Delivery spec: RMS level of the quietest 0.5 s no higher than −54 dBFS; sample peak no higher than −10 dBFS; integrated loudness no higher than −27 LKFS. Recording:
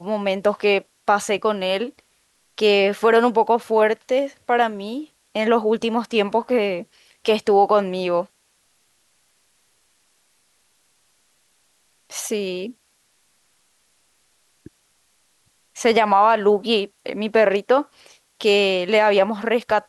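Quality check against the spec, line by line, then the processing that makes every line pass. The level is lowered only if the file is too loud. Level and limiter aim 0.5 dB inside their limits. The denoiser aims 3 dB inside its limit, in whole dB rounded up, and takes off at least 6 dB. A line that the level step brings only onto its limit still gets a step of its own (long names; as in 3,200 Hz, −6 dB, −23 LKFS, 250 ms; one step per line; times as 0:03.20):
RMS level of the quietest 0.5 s −64 dBFS: in spec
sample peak −6.0 dBFS: out of spec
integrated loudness −19.5 LKFS: out of spec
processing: level −8 dB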